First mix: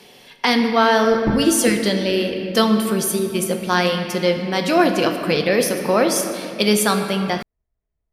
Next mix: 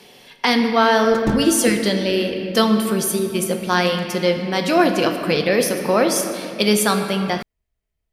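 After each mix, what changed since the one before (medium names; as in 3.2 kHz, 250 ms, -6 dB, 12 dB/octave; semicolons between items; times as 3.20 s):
background: remove low-pass 1.4 kHz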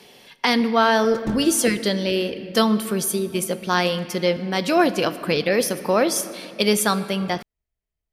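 speech: send -9.0 dB; background -7.0 dB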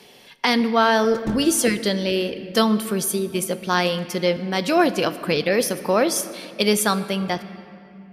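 background: send on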